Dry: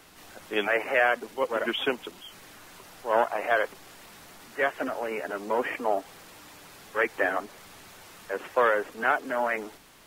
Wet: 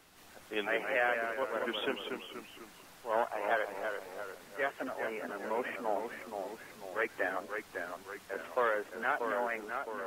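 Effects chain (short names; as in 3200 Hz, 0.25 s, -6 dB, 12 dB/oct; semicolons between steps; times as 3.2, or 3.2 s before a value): echoes that change speed 0.125 s, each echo -1 st, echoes 3, each echo -6 dB; gain -8 dB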